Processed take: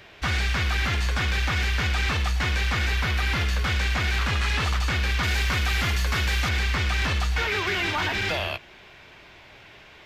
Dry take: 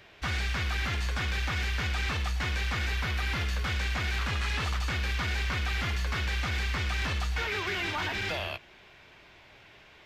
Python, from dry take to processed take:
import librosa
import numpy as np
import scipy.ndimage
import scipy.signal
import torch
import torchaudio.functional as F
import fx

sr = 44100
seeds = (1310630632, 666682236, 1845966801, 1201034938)

y = fx.high_shelf(x, sr, hz=7300.0, db=9.0, at=(5.23, 6.49))
y = y * 10.0 ** (6.0 / 20.0)